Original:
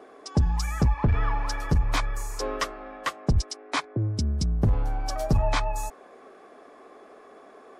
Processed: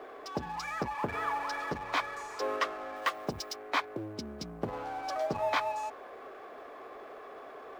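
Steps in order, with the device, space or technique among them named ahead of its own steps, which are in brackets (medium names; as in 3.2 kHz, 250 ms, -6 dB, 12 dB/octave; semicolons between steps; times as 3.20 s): phone line with mismatched companding (band-pass 390–3500 Hz; companding laws mixed up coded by mu); 2.96–3.56 s: treble shelf 7.4 kHz +11 dB; trim -2 dB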